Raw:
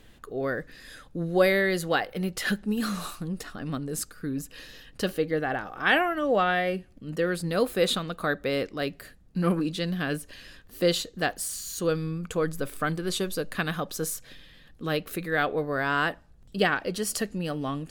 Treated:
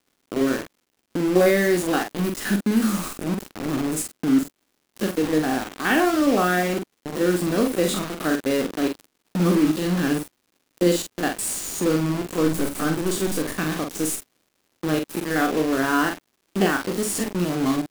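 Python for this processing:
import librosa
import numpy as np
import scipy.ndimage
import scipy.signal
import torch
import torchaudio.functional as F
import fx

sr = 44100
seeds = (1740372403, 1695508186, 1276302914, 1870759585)

y = fx.spec_steps(x, sr, hold_ms=50)
y = fx.graphic_eq_10(y, sr, hz=(125, 500, 2000, 4000, 8000, 16000), db=(-10, -7, -4, -8, 6, -5))
y = fx.quant_dither(y, sr, seeds[0], bits=6, dither='none')
y = fx.dmg_crackle(y, sr, seeds[1], per_s=200.0, level_db=-57.0)
y = fx.peak_eq(y, sr, hz=290.0, db=10.0, octaves=1.4)
y = fx.doubler(y, sr, ms=45.0, db=-5.5)
y = y * librosa.db_to_amplitude(5.0)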